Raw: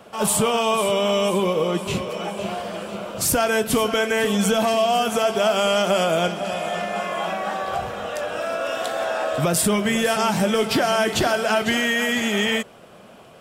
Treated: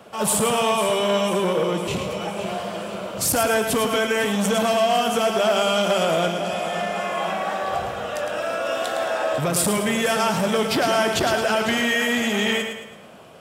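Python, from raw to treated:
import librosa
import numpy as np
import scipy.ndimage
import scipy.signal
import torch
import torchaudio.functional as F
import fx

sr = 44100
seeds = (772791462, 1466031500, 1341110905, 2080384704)

y = scipy.signal.sosfilt(scipy.signal.butter(2, 46.0, 'highpass', fs=sr, output='sos'), x)
y = fx.echo_feedback(y, sr, ms=109, feedback_pct=44, wet_db=-7.0)
y = fx.transformer_sat(y, sr, knee_hz=680.0)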